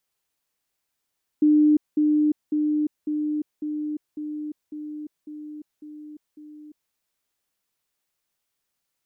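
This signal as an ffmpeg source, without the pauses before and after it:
-f lavfi -i "aevalsrc='pow(10,(-13.5-3*floor(t/0.55))/20)*sin(2*PI*301*t)*clip(min(mod(t,0.55),0.35-mod(t,0.55))/0.005,0,1)':d=5.5:s=44100"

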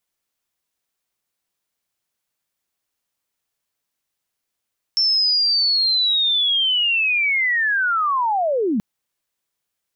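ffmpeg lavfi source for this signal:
-f lavfi -i "aevalsrc='pow(10,(-14.5-2.5*t/3.83)/20)*sin(2*PI*(5400*t-5210*t*t/(2*3.83)))':d=3.83:s=44100"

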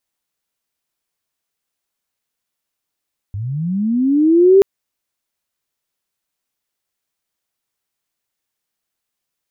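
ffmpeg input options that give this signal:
-f lavfi -i "aevalsrc='pow(10,(-21.5+17*t/1.28)/20)*sin(2*PI*(94*t+306*t*t/(2*1.28)))':d=1.28:s=44100"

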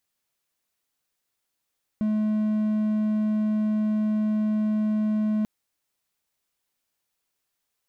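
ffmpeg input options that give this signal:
-f lavfi -i "aevalsrc='0.112*(1-4*abs(mod(214*t+0.25,1)-0.5))':d=3.44:s=44100"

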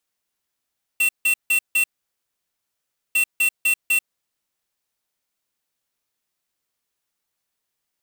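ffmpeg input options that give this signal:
-f lavfi -i "aevalsrc='0.126*(2*lt(mod(2710*t,1),0.5)-1)*clip(min(mod(mod(t,2.15),0.25),0.09-mod(mod(t,2.15),0.25))/0.005,0,1)*lt(mod(t,2.15),1)':d=4.3:s=44100"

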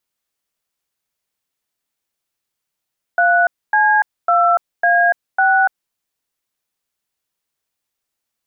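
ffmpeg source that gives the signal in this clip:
-f lavfi -i "aevalsrc='0.224*clip(min(mod(t,0.551),0.29-mod(t,0.551))/0.002,0,1)*(eq(floor(t/0.551),0)*(sin(2*PI*697*mod(t,0.551))+sin(2*PI*1477*mod(t,0.551)))+eq(floor(t/0.551),1)*(sin(2*PI*852*mod(t,0.551))+sin(2*PI*1633*mod(t,0.551)))+eq(floor(t/0.551),2)*(sin(2*PI*697*mod(t,0.551))+sin(2*PI*1336*mod(t,0.551)))+eq(floor(t/0.551),3)*(sin(2*PI*697*mod(t,0.551))+sin(2*PI*1633*mod(t,0.551)))+eq(floor(t/0.551),4)*(sin(2*PI*770*mod(t,0.551))+sin(2*PI*1477*mod(t,0.551))))':d=2.755:s=44100"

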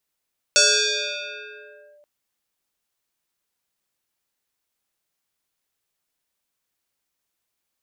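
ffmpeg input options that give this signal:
-f lavfi -i "aevalsrc='0.282*pow(10,-3*t/2.17)*sin(2*PI*590*t+6.8*clip(1-t/1.43,0,1)*sin(2*PI*1.72*590*t))':d=1.48:s=44100"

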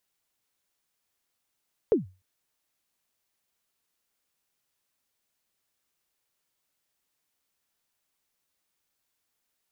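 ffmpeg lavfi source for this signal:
-f lavfi -i "aevalsrc='0.2*pow(10,-3*t/0.3)*sin(2*PI*(490*0.139/log(93/490)*(exp(log(93/490)*min(t,0.139)/0.139)-1)+93*max(t-0.139,0)))':d=0.3:s=44100"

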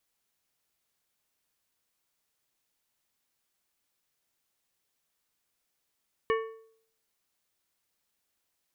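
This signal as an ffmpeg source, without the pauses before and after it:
-f lavfi -i "aevalsrc='0.075*pow(10,-3*t/0.62)*sin(2*PI*447*t)+0.0447*pow(10,-3*t/0.471)*sin(2*PI*1117.5*t)+0.0266*pow(10,-3*t/0.409)*sin(2*PI*1788*t)+0.0158*pow(10,-3*t/0.383)*sin(2*PI*2235*t)+0.00944*pow(10,-3*t/0.354)*sin(2*PI*2905.5*t)':d=1.55:s=44100"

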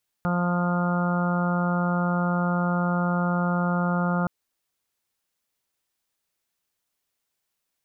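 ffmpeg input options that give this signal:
-f lavfi -i "aevalsrc='0.075*sin(2*PI*176*t)+0.0133*sin(2*PI*352*t)+0.0251*sin(2*PI*528*t)+0.0224*sin(2*PI*704*t)+0.02*sin(2*PI*880*t)+0.0119*sin(2*PI*1056*t)+0.0237*sin(2*PI*1232*t)+0.0237*sin(2*PI*1408*t)':d=4.02:s=44100"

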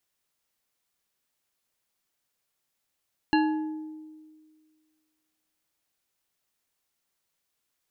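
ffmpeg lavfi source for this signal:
-f lavfi -i "aevalsrc='0.112*pow(10,-3*t/1.85)*sin(2*PI*311*t)+0.075*pow(10,-3*t/0.91)*sin(2*PI*857.4*t)+0.0501*pow(10,-3*t/0.568)*sin(2*PI*1680.6*t)+0.0335*pow(10,-3*t/0.399)*sin(2*PI*2778.2*t)+0.0224*pow(10,-3*t/0.302)*sin(2*PI*4148.7*t)':d=3.49:s=44100"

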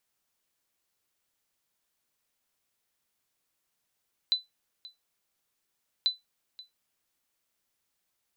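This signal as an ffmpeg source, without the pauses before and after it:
-f lavfi -i "aevalsrc='0.141*(sin(2*PI*4000*mod(t,1.74))*exp(-6.91*mod(t,1.74)/0.17)+0.0944*sin(2*PI*4000*max(mod(t,1.74)-0.53,0))*exp(-6.91*max(mod(t,1.74)-0.53,0)/0.17))':d=3.48:s=44100"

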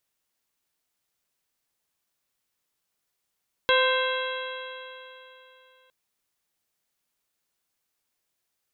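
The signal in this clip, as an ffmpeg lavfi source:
-f lavfi -i "aevalsrc='0.0891*pow(10,-3*t/3.13)*sin(2*PI*513.95*t)+0.0631*pow(10,-3*t/3.13)*sin(2*PI*1033.56*t)+0.0708*pow(10,-3*t/3.13)*sin(2*PI*1564.41*t)+0.0355*pow(10,-3*t/3.13)*sin(2*PI*2111.87*t)+0.0422*pow(10,-3*t/3.13)*sin(2*PI*2681.01*t)+0.0531*pow(10,-3*t/3.13)*sin(2*PI*3276.59*t)+0.0335*pow(10,-3*t/3.13)*sin(2*PI*3902.97*t)':d=2.21:s=44100"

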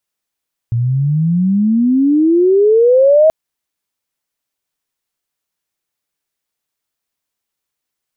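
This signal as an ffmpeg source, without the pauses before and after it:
-f lavfi -i "aevalsrc='pow(10,(-5+7*(t/2.58-1))/20)*sin(2*PI*114*2.58/(30*log(2)/12)*(exp(30*log(2)/12*t/2.58)-1))':d=2.58:s=44100"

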